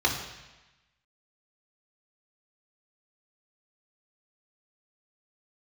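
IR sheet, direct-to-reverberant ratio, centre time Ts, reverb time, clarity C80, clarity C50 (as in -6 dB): -3.0 dB, 32 ms, 1.1 s, 8.5 dB, 6.0 dB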